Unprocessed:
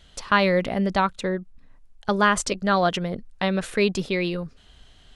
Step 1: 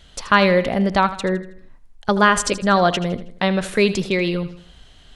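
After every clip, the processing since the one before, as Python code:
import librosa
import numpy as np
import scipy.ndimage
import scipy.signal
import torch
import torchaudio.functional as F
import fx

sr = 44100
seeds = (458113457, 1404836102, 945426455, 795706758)

y = fx.echo_feedback(x, sr, ms=80, feedback_pct=44, wet_db=-14)
y = y * librosa.db_to_amplitude(4.5)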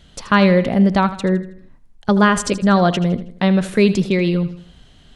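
y = fx.peak_eq(x, sr, hz=180.0, db=8.5, octaves=2.1)
y = y * librosa.db_to_amplitude(-2.0)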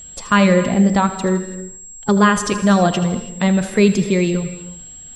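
y = fx.spec_quant(x, sr, step_db=15)
y = fx.rev_gated(y, sr, seeds[0], gate_ms=360, shape='flat', drr_db=11.5)
y = y + 10.0 ** (-35.0 / 20.0) * np.sin(2.0 * np.pi * 7600.0 * np.arange(len(y)) / sr)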